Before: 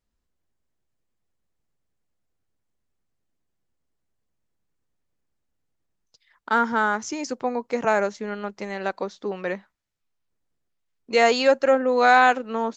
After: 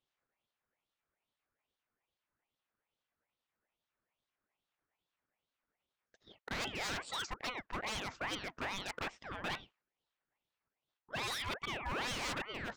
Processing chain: reverse; compressor 16:1, threshold -28 dBFS, peak gain reduction 18 dB; reverse; wah 2.4 Hz 620–2500 Hz, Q 2.1; wavefolder -39.5 dBFS; ring modulator with a swept carrier 1100 Hz, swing 60%, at 2.4 Hz; gain +9.5 dB

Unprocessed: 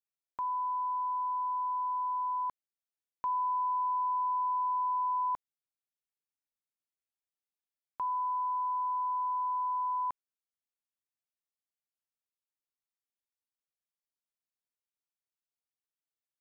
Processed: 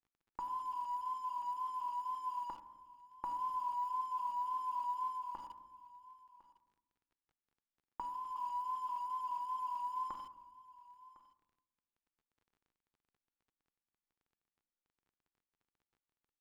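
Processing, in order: wow and flutter 46 cents; shoebox room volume 470 m³, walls mixed, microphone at 0.88 m; in parallel at -6 dB: bit-crush 7-bit; 5.09–8.36 on the sum: compressor 5:1, threshold -29 dBFS, peak gain reduction 6.5 dB; comb 3.5 ms, depth 60%; on a send: echo 1.055 s -19 dB; on the sum: crackle 23/s -53 dBFS; LPF 1000 Hz 6 dB/oct; bell 590 Hz -9.5 dB 0.35 oct; gain -1.5 dB

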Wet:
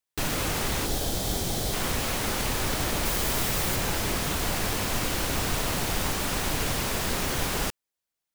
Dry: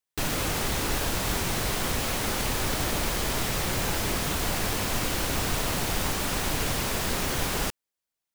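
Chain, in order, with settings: 0.85–1.74 spectral gain 860–3000 Hz -8 dB; 3.05–3.76 high shelf 9500 Hz +6 dB

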